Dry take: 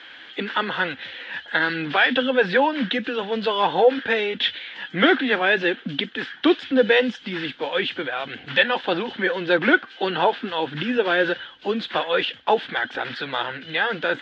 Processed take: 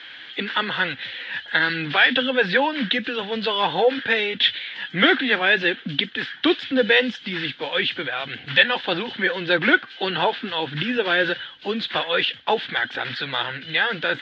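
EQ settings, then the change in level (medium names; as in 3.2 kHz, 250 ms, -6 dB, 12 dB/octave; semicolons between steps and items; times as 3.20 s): ten-band graphic EQ 125 Hz +8 dB, 2 kHz +5 dB, 4 kHz +7 dB; -3.0 dB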